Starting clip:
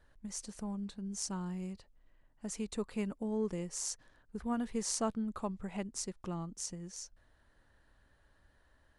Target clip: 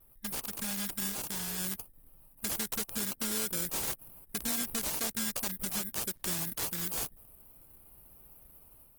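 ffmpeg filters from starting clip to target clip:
-filter_complex "[0:a]dynaudnorm=f=350:g=3:m=4dB,alimiter=limit=-23dB:level=0:latency=1:release=182,acompressor=threshold=-40dB:ratio=3,acrusher=samples=24:mix=1:aa=0.000001,aexciter=amount=15.4:drive=8.9:freq=10k,asettb=1/sr,asplit=3[a][b][c];[a]atrim=end=4.384[d];[b]atrim=start=4.38:end=5.38,asetpts=PTS-STARTPTS,afade=t=in:d=0.004:c=qsin,afade=t=out:st=0.996:d=0.004:c=qsin,aeval=exprs='0.398*(cos(1*acos(clip(val(0)/0.398,-1,1)))-cos(1*PI/2))+0.0224*(cos(4*acos(clip(val(0)/0.398,-1,1)))-cos(4*PI/2))':c=same[e];[c]atrim=start=5.376[f];[d][e]acrossfade=d=0.004:c1=hsin:c2=qsin[g];[g][f]acrossfade=d=0.004:c1=qsin:c2=hsin,aeval=exprs='(mod(13.3*val(0)+1,2)-1)/13.3':c=same,asplit=3[h][i][j];[h]afade=t=out:st=1.09:d=0.02[k];[i]tremolo=f=240:d=0.667,afade=t=in:st=1.09:d=0.02,afade=t=out:st=1.57:d=0.02[l];[j]afade=t=in:st=1.57:d=0.02[m];[k][l][m]amix=inputs=3:normalize=0,asettb=1/sr,asplit=3[n][o][p];[n]atrim=end=6.104[q];[o]atrim=start=6.1:end=6.63,asetpts=PTS-STARTPTS,afade=t=in:d=0.004:c=qsin,afade=t=out:st=0.526:d=0.004:c=qsin,acrusher=bits=3:mode=log:mix=0:aa=0.000001[r];[p]atrim=start=6.626[s];[q][r]acrossfade=d=0.004:c1=hsin:c2=qsin[t];[t][s]acrossfade=d=0.004:c1=qsin:c2=hsin,volume=1dB" -ar 48000 -c:a libopus -b:a 16k

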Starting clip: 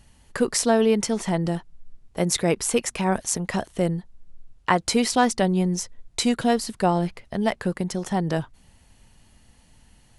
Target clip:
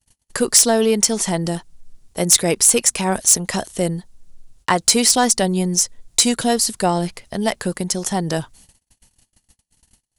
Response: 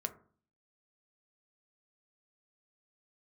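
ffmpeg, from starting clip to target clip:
-af "agate=range=-38dB:threshold=-50dB:ratio=16:detection=peak,bass=f=250:g=-2,treble=f=4k:g=13,acontrast=39,volume=-2dB"

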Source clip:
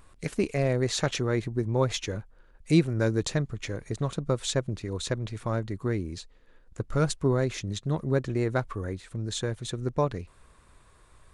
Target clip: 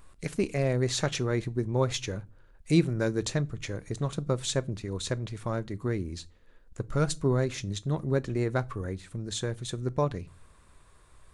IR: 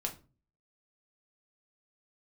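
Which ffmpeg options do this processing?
-filter_complex "[0:a]asplit=2[a][b];[1:a]atrim=start_sample=2205,lowshelf=f=240:g=8,highshelf=f=3.4k:g=12[c];[b][c]afir=irnorm=-1:irlink=0,volume=-17dB[d];[a][d]amix=inputs=2:normalize=0,volume=-3dB"

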